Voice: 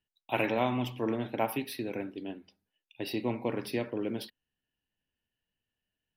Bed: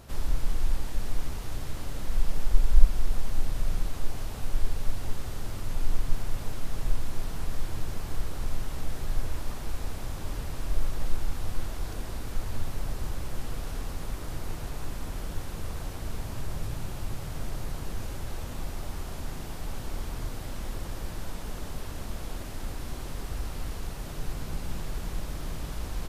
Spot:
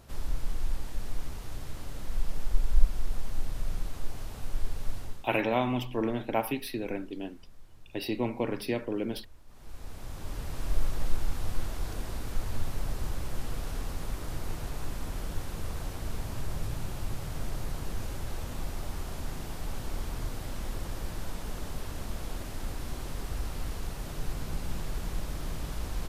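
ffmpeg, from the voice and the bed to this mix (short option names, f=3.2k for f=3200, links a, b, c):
-filter_complex "[0:a]adelay=4950,volume=1.5dB[a];[1:a]volume=17.5dB,afade=t=out:st=4.97:d=0.33:silence=0.125893,afade=t=in:st=9.47:d=1.23:silence=0.0794328[b];[a][b]amix=inputs=2:normalize=0"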